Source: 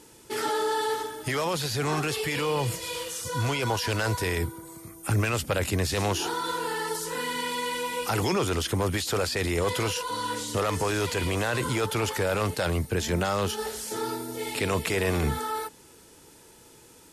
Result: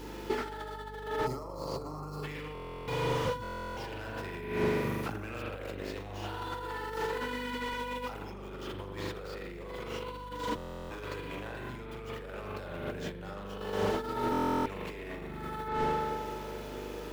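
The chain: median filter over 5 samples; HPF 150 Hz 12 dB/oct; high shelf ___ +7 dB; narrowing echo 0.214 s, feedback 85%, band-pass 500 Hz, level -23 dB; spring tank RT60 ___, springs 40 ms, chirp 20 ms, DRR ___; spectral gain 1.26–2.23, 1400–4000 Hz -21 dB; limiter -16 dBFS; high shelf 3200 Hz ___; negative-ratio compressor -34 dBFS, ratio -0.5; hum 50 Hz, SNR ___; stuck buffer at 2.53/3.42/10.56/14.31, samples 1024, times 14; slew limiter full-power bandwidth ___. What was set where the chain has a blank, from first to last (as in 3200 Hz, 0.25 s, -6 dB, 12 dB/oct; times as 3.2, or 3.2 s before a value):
11000 Hz, 1.5 s, -2 dB, -4.5 dB, 12 dB, 34 Hz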